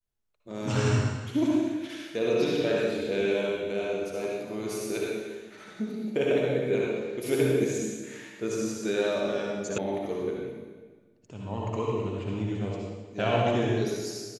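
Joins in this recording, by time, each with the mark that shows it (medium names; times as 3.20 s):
9.78 s: sound stops dead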